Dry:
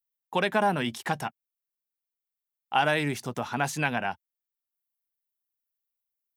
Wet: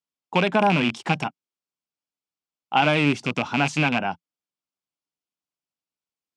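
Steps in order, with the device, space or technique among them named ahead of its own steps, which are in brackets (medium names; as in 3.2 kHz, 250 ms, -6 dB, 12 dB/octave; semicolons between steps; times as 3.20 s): car door speaker with a rattle (rattle on loud lows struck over -35 dBFS, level -16 dBFS; cabinet simulation 86–7100 Hz, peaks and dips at 170 Hz +6 dB, 280 Hz +6 dB, 1.8 kHz -9 dB, 3.9 kHz -4 dB, 6.3 kHz -4 dB); trim +4.5 dB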